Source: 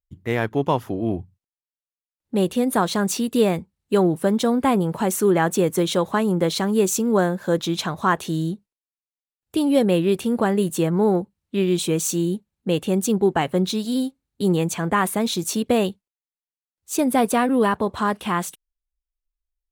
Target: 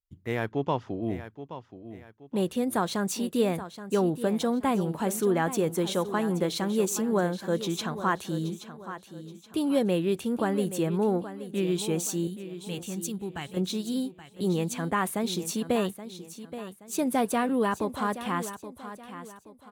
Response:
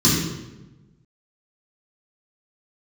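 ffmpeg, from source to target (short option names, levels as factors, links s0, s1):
-filter_complex "[0:a]asettb=1/sr,asplit=3[s0][s1][s2];[s0]atrim=end=0.514[s3];[s1]atrim=start=0.51:end=1.03,asetpts=PTS-STARTPTS,afade=t=in:d=0.004:c=qsin,afade=t=out:st=0.516:d=0.004:c=qsin,lowpass=f=6000:w=0.5412,lowpass=f=6000:w=1.3066[s4];[s2]atrim=start=1.026[s5];[s3][s4]acrossfade=d=0.004:c1=hsin:c2=qsin[s6];[s6][s5]acrossfade=d=0.004:c1=qsin:c2=hsin,asettb=1/sr,asplit=3[s7][s8][s9];[s7]atrim=end=12.274[s10];[s8]atrim=start=12.27:end=13.57,asetpts=PTS-STARTPTS,afade=t=in:d=0.004:c=qsin,afade=t=out:st=1.296:d=0.004:c=qsin,equalizer=f=540:w=0.45:g=-13.5[s11];[s9]atrim=start=13.566[s12];[s10][s11]acrossfade=d=0.004:c1=hsin:c2=qsin[s13];[s13][s12]acrossfade=d=0.004:c1=qsin:c2=hsin,aecho=1:1:825|1650|2475|3300:0.237|0.0854|0.0307|0.0111,volume=0.447"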